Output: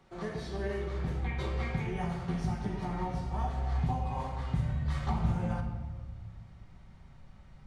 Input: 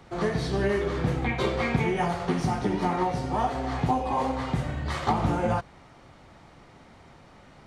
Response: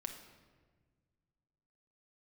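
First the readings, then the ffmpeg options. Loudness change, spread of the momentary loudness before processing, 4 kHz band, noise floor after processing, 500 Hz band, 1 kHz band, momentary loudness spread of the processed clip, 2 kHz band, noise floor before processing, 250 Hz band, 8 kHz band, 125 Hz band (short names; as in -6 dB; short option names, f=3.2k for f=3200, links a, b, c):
-7.0 dB, 4 LU, -11.0 dB, -54 dBFS, -11.5 dB, -11.0 dB, 10 LU, -10.5 dB, -53 dBFS, -8.0 dB, under -10 dB, -2.5 dB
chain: -filter_complex "[0:a]asubboost=boost=8:cutoff=120[a];[1:a]atrim=start_sample=2205[b];[a][b]afir=irnorm=-1:irlink=0,volume=-8.5dB"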